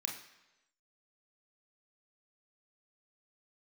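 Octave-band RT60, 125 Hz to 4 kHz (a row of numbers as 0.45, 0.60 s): 0.90, 0.90, 1.0, 1.0, 1.0, 0.95 s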